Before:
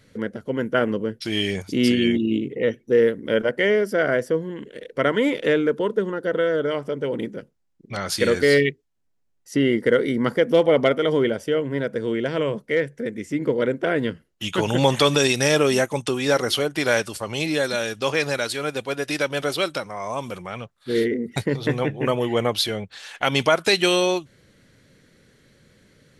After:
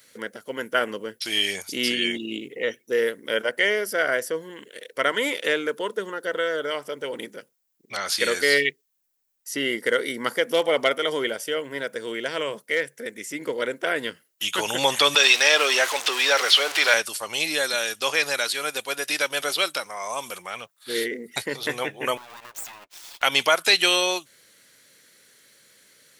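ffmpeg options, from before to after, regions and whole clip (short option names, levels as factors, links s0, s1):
-filter_complex "[0:a]asettb=1/sr,asplit=3[s0][s1][s2];[s0]atrim=end=15.154[s3];[s1]atrim=start=15.15:end=16.94,asetpts=PTS-STARTPTS,afade=t=in:d=0.004:c=qsin,afade=t=out:st=1.786:d=0.004:c=qsin,aeval=exprs='val(0)+0.5*0.0708*sgn(val(0))':c=same,highpass=450,lowpass=3500,aemphasis=mode=production:type=75kf[s4];[s2]atrim=start=16.936[s5];[s3][s4]acrossfade=d=0.004:c1=hsin:c2=qsin[s6];[s6][s5]acrossfade=d=0.004:c1=qsin:c2=hsin,asettb=1/sr,asplit=3[s7][s8][s9];[s7]atrim=end=22.174[s10];[s8]atrim=start=22.17:end=23.23,asetpts=PTS-STARTPTS,afade=t=in:d=0.004:c=qsin,afade=t=out:st=1.056:d=0.004:c=qsin,bandpass=f=840:t=q:w=0.59,acompressor=threshold=0.0224:ratio=12:attack=3.2:release=140:knee=1:detection=peak,aeval=exprs='abs(val(0))':c=same[s11];[s9]atrim=start=23.226[s12];[s10][s11]acrossfade=d=0.004:c1=hsin:c2=qsin[s13];[s13][s12]acrossfade=d=0.004:c1=qsin:c2=hsin,lowshelf=f=440:g=-12,acrossover=split=4700[s14][s15];[s15]acompressor=threshold=0.00891:ratio=4:attack=1:release=60[s16];[s14][s16]amix=inputs=2:normalize=0,aemphasis=mode=production:type=bsi,volume=1.19"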